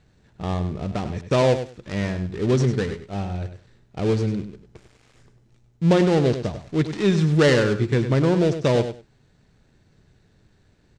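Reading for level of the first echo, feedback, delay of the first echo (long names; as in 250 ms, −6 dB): −10.0 dB, 17%, 99 ms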